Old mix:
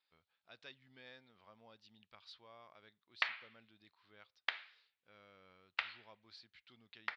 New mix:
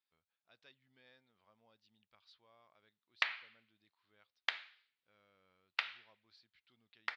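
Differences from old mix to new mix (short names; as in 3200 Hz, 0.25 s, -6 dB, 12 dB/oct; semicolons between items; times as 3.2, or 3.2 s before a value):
speech -9.0 dB; background: remove air absorption 120 m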